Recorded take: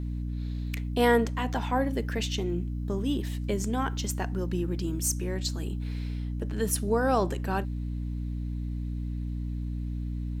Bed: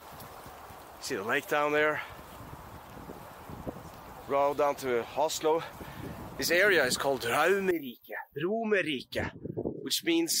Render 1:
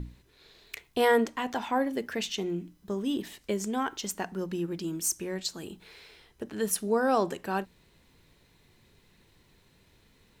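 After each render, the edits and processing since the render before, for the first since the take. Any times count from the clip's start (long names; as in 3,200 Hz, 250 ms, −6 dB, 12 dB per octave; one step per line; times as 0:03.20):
mains-hum notches 60/120/180/240/300 Hz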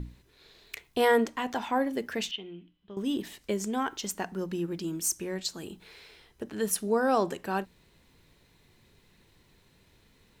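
0:02.31–0:02.97: transistor ladder low-pass 3,300 Hz, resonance 75%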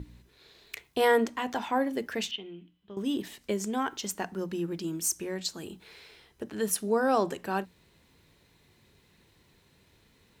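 high-pass filter 43 Hz
mains-hum notches 60/120/180/240 Hz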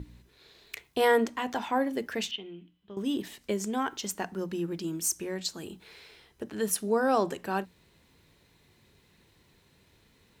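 no processing that can be heard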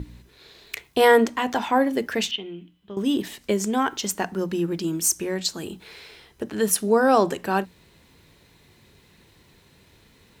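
level +7.5 dB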